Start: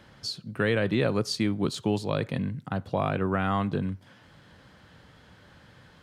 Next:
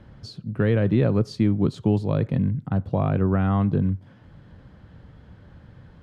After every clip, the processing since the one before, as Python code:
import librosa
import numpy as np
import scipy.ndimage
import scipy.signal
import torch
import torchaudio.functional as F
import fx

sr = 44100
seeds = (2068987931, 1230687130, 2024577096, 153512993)

y = fx.tilt_eq(x, sr, slope=-3.5)
y = F.gain(torch.from_numpy(y), -1.5).numpy()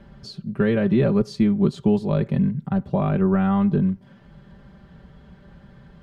y = x + 0.77 * np.pad(x, (int(5.1 * sr / 1000.0), 0))[:len(x)]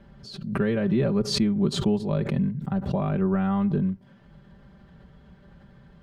y = fx.pre_swell(x, sr, db_per_s=80.0)
y = F.gain(torch.from_numpy(y), -4.5).numpy()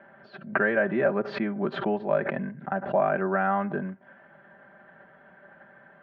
y = fx.cabinet(x, sr, low_hz=450.0, low_slope=12, high_hz=2200.0, hz=(450.0, 660.0, 1100.0, 1600.0), db=(-6, 7, -3, 8))
y = F.gain(torch.from_numpy(y), 6.0).numpy()